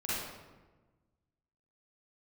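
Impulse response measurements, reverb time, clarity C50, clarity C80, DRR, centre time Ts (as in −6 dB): 1.3 s, −5.0 dB, 0.5 dB, −10.0 dB, 103 ms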